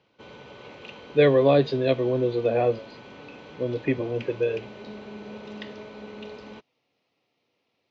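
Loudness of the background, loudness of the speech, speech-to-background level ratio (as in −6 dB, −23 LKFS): −42.5 LKFS, −23.5 LKFS, 19.0 dB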